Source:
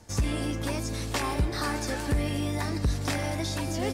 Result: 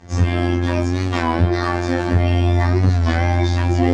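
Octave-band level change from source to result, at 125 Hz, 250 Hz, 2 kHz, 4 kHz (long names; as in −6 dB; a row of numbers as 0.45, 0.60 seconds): +14.0, +11.0, +9.0, +4.0 decibels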